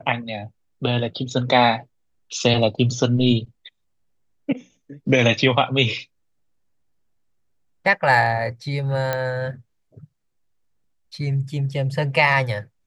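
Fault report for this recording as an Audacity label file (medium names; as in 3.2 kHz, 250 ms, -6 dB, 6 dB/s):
9.130000	9.130000	pop -9 dBFS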